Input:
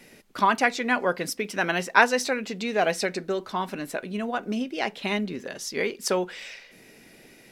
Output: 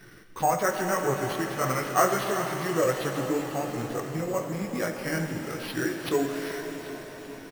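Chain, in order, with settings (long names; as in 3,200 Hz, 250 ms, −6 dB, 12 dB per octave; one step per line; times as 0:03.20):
dynamic equaliser 900 Hz, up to +8 dB, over −39 dBFS, Q 2
multi-voice chorus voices 4, 1.1 Hz, delay 16 ms, depth 3.7 ms
octave-band graphic EQ 125/250/1,000/4,000/8,000 Hz +4/−8/−10/−7/−8 dB
in parallel at +2 dB: downward compressor, threshold −43 dBFS, peak gain reduction 23 dB
on the sum: pitch shifter −4.5 semitones
harmonic and percussive parts rebalanced harmonic +3 dB
on a send: echo with a time of its own for lows and highs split 410 Hz, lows 535 ms, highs 390 ms, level −13 dB
on the sum: bad sample-rate conversion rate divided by 6×, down none, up hold
reverb with rising layers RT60 3.9 s, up +7 semitones, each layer −8 dB, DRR 5 dB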